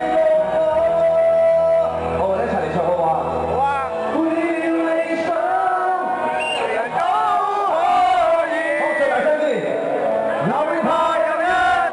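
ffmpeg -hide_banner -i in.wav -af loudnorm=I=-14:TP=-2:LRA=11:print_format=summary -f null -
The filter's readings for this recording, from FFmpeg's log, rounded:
Input Integrated:    -18.3 LUFS
Input True Peak:      -9.1 dBTP
Input LRA:             1.9 LU
Input Threshold:     -28.3 LUFS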